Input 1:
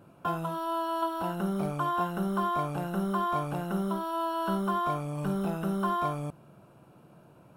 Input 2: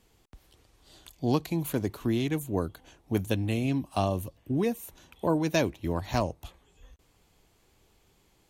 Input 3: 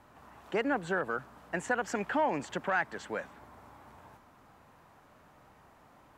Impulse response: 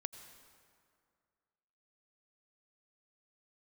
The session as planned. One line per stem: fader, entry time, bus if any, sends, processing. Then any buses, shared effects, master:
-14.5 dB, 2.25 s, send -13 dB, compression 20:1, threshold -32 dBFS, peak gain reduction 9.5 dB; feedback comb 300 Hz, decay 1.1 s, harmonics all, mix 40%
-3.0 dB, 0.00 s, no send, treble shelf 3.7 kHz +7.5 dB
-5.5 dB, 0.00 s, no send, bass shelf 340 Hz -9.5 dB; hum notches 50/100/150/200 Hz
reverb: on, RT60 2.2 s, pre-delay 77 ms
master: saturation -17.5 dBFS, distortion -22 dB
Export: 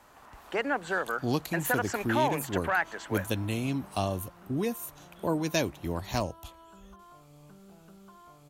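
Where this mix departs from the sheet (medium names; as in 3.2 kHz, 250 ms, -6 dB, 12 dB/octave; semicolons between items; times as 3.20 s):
stem 3 -5.5 dB -> +3.5 dB; master: missing saturation -17.5 dBFS, distortion -22 dB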